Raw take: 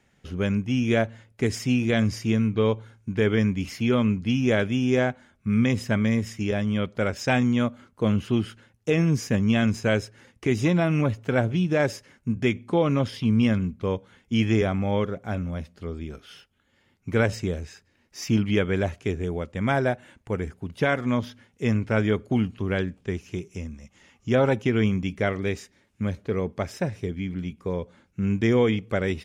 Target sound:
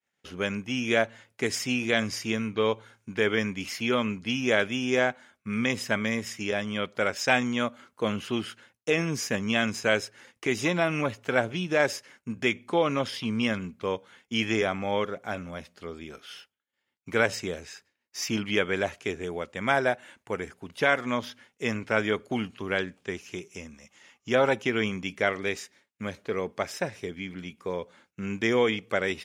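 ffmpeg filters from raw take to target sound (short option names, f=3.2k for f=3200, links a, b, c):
-af "agate=range=-33dB:threshold=-53dB:ratio=3:detection=peak,highpass=f=750:p=1,volume=3.5dB"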